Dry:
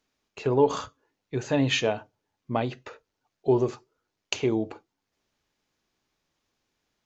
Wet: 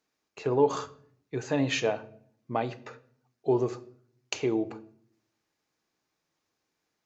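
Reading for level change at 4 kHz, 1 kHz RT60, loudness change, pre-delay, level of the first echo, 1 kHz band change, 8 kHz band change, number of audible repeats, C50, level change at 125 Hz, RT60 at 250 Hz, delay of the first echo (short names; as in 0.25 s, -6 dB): -5.5 dB, 0.55 s, -2.5 dB, 3 ms, none, -1.5 dB, n/a, none, 18.5 dB, -5.0 dB, 0.95 s, none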